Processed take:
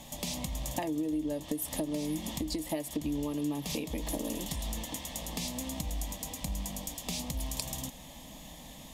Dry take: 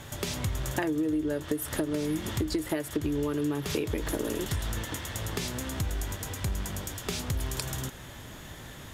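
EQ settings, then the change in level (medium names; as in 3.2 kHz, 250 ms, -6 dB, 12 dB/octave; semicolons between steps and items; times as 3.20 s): peaking EQ 560 Hz -2 dB 0.3 oct; static phaser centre 390 Hz, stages 6; 0.0 dB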